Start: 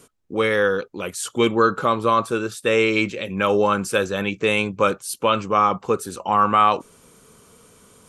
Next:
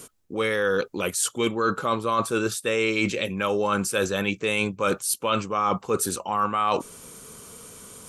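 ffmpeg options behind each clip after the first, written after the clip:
ffmpeg -i in.wav -af "highshelf=frequency=5200:gain=8,areverse,acompressor=threshold=-25dB:ratio=6,areverse,volume=4dB" out.wav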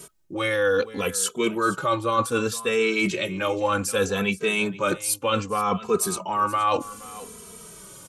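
ffmpeg -i in.wav -filter_complex "[0:a]aecho=1:1:474:0.133,asplit=2[link_01][link_02];[link_02]adelay=2.7,afreqshift=-0.65[link_03];[link_01][link_03]amix=inputs=2:normalize=1,volume=3.5dB" out.wav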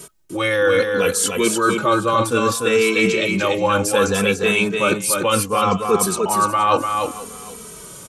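ffmpeg -i in.wav -af "aecho=1:1:295:0.596,volume=5dB" out.wav

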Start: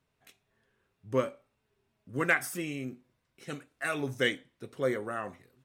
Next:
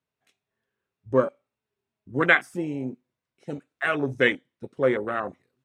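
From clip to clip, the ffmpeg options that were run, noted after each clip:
ffmpeg -i in.wav -af "highpass=frequency=130:poles=1,afwtdn=0.0141,lowpass=9400,volume=8dB" out.wav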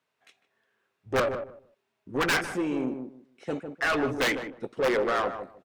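ffmpeg -i in.wav -filter_complex "[0:a]aeval=exprs='(mod(3.76*val(0)+1,2)-1)/3.76':channel_layout=same,asplit=2[link_01][link_02];[link_02]highpass=frequency=720:poles=1,volume=24dB,asoftclip=type=tanh:threshold=-11.5dB[link_03];[link_01][link_03]amix=inputs=2:normalize=0,lowpass=frequency=3500:poles=1,volume=-6dB,asplit=2[link_04][link_05];[link_05]adelay=152,lowpass=frequency=900:poles=1,volume=-6.5dB,asplit=2[link_06][link_07];[link_07]adelay=152,lowpass=frequency=900:poles=1,volume=0.22,asplit=2[link_08][link_09];[link_09]adelay=152,lowpass=frequency=900:poles=1,volume=0.22[link_10];[link_06][link_08][link_10]amix=inputs=3:normalize=0[link_11];[link_04][link_11]amix=inputs=2:normalize=0,volume=-6.5dB" out.wav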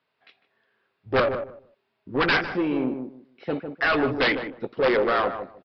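ffmpeg -i in.wav -af "aresample=11025,aresample=44100,volume=4dB" out.wav

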